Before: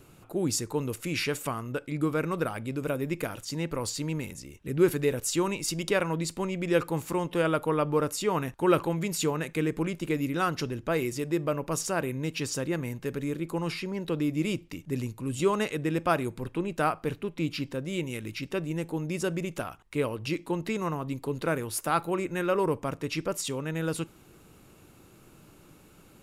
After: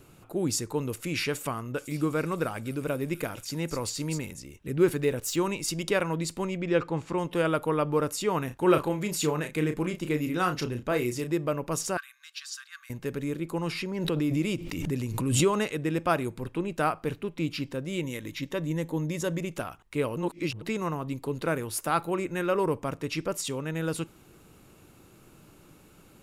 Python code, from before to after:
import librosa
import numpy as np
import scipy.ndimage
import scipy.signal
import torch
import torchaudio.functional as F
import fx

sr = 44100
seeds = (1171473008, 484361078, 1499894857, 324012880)

y = fx.echo_wet_highpass(x, sr, ms=251, feedback_pct=51, hz=5000.0, wet_db=-3.5, at=(1.77, 4.17), fade=0.02)
y = fx.resample_linear(y, sr, factor=2, at=(4.76, 5.37))
y = fx.air_absorb(y, sr, metres=110.0, at=(6.57, 7.18))
y = fx.doubler(y, sr, ms=33.0, db=-8, at=(8.47, 11.33))
y = fx.cheby_ripple_highpass(y, sr, hz=1100.0, ripple_db=9, at=(11.97, 12.9))
y = fx.pre_swell(y, sr, db_per_s=36.0, at=(13.63, 15.65))
y = fx.ripple_eq(y, sr, per_octave=1.1, db=7, at=(18.03, 19.4))
y = fx.edit(y, sr, fx.reverse_span(start_s=20.16, length_s=0.46), tone=tone)